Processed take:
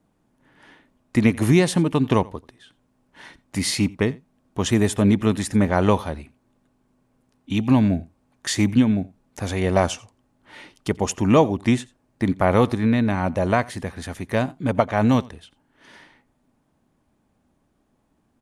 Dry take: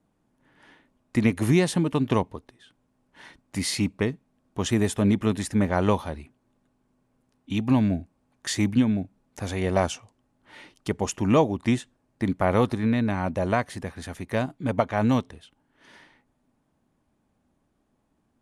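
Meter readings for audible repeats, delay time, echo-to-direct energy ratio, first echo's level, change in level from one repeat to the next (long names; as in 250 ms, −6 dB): 1, 87 ms, −23.0 dB, −23.0 dB, repeats not evenly spaced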